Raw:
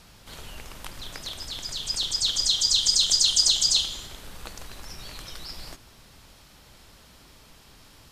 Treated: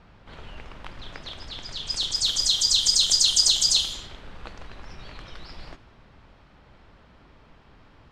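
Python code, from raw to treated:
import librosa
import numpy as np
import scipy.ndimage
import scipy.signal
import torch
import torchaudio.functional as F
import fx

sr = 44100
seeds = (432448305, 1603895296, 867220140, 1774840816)

y = fx.env_lowpass(x, sr, base_hz=1800.0, full_db=-21.0)
y = F.gain(torch.from_numpy(y), 1.0).numpy()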